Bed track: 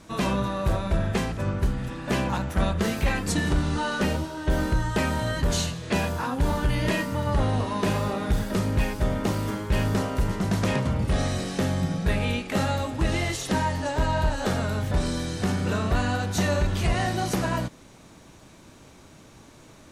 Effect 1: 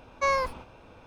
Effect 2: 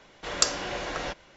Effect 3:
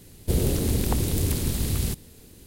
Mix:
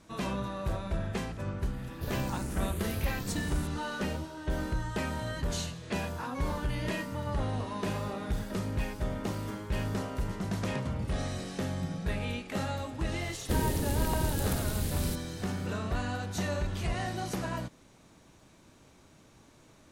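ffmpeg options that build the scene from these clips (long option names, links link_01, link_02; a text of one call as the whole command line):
ffmpeg -i bed.wav -i cue0.wav -i cue1.wav -i cue2.wav -filter_complex "[3:a]asplit=2[link_01][link_02];[0:a]volume=-8.5dB[link_03];[link_01]asplit=2[link_04][link_05];[link_05]afreqshift=0.94[link_06];[link_04][link_06]amix=inputs=2:normalize=1,atrim=end=2.46,asetpts=PTS-STARTPTS,volume=-11dB,afade=type=in:duration=0.004:curve=hsin,afade=type=out:start_time=2.456:duration=0.004:curve=hsin,adelay=1730[link_07];[1:a]atrim=end=1.06,asetpts=PTS-STARTPTS,volume=-18dB,afade=type=in:duration=0.004:curve=hsin,afade=type=out:start_time=1.056:duration=0.004:curve=hsin,adelay=6130[link_08];[link_02]atrim=end=2.46,asetpts=PTS-STARTPTS,volume=-7dB,afade=type=in:duration=0.004:curve=hsin,afade=type=out:start_time=2.456:duration=0.004:curve=hsin,adelay=13210[link_09];[link_03][link_07][link_08][link_09]amix=inputs=4:normalize=0" out.wav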